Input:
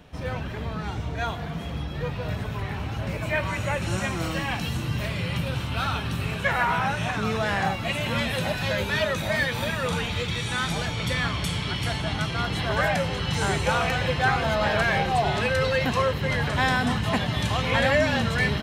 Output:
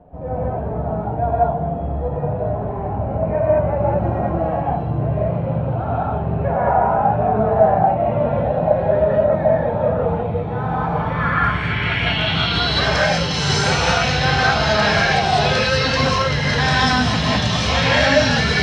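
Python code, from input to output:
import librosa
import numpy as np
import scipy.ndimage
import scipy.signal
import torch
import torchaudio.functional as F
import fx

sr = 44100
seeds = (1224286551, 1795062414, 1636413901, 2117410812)

y = fx.filter_sweep_lowpass(x, sr, from_hz=700.0, to_hz=5400.0, start_s=10.45, end_s=12.78, q=3.4)
y = fx.rev_gated(y, sr, seeds[0], gate_ms=230, shape='rising', drr_db=-6.0)
y = F.gain(torch.from_numpy(y), -1.0).numpy()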